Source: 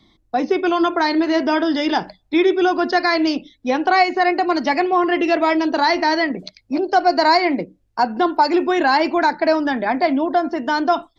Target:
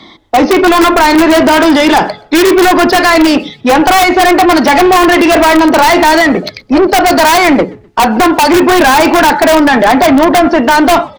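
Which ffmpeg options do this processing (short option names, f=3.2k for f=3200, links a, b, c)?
-filter_complex "[0:a]bandreject=f=423.5:t=h:w=4,bandreject=f=847:t=h:w=4,bandreject=f=1.2705k:t=h:w=4,asplit=2[a][b];[b]highpass=f=720:p=1,volume=28dB,asoftclip=type=tanh:threshold=-4dB[c];[a][c]amix=inputs=2:normalize=0,lowpass=f=1.9k:p=1,volume=-6dB,asplit=3[d][e][f];[e]adelay=126,afreqshift=-79,volume=-24dB[g];[f]adelay=252,afreqshift=-158,volume=-33.4dB[h];[d][g][h]amix=inputs=3:normalize=0,asplit=2[i][j];[j]aeval=exprs='(mod(2.24*val(0)+1,2)-1)/2.24':c=same,volume=-3dB[k];[i][k]amix=inputs=2:normalize=0,volume=1dB"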